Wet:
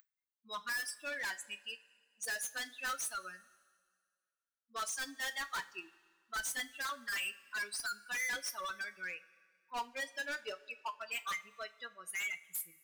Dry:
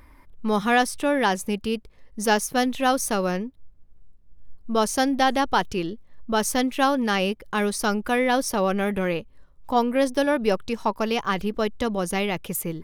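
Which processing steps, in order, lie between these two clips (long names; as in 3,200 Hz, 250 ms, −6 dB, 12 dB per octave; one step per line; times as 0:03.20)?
spectral dynamics exaggerated over time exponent 3
high-shelf EQ 4,800 Hz −3.5 dB
upward compression, threshold −43 dBFS
high-pass with resonance 1,600 Hz, resonance Q 2.9
hard clipping −39.5 dBFS, distortion 0 dB
coupled-rooms reverb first 0.22 s, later 1.9 s, from −20 dB, DRR 8 dB
level +3 dB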